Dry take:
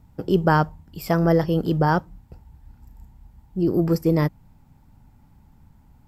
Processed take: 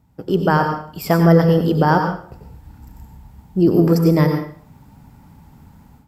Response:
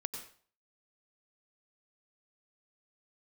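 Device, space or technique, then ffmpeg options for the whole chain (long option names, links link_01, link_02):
far laptop microphone: -filter_complex "[1:a]atrim=start_sample=2205[link_01];[0:a][link_01]afir=irnorm=-1:irlink=0,highpass=frequency=100:poles=1,dynaudnorm=framelen=170:gausssize=3:maxgain=12.5dB,volume=-1dB"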